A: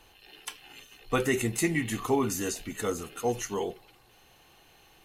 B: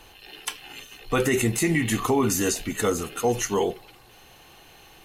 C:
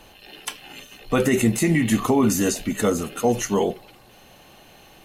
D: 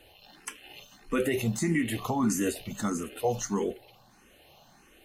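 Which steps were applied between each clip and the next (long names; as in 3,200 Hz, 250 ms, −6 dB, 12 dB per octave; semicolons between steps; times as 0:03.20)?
brickwall limiter −21 dBFS, peak gain reduction 6.5 dB; level +8 dB
hollow resonant body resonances 210/580 Hz, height 8 dB, ringing for 25 ms
frequency shifter mixed with the dry sound +1.6 Hz; level −5.5 dB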